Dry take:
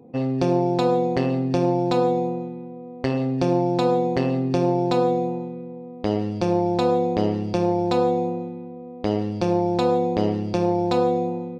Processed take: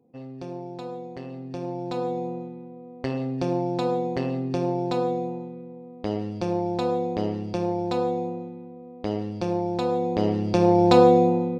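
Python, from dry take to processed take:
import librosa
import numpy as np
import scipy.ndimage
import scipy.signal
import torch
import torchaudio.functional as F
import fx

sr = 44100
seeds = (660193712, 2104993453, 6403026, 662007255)

y = fx.gain(x, sr, db=fx.line((1.22, -15.5), (2.37, -5.0), (9.89, -5.0), (10.92, 5.5)))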